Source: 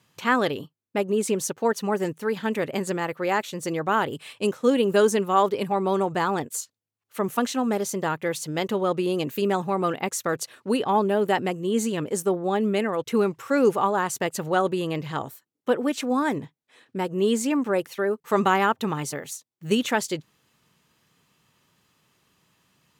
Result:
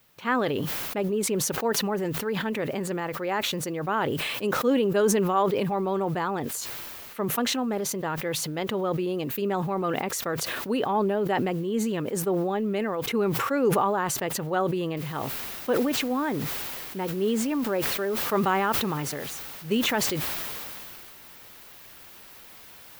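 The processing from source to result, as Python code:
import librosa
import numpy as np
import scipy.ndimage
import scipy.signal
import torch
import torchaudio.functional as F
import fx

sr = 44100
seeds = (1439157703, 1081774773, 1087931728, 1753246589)

y = fx.noise_floor_step(x, sr, seeds[0], at_s=14.97, before_db=-56, after_db=-41, tilt_db=0.0)
y = fx.peak_eq(y, sr, hz=7900.0, db=-9.5, octaves=1.5)
y = fx.sustainer(y, sr, db_per_s=20.0)
y = F.gain(torch.from_numpy(y), -4.0).numpy()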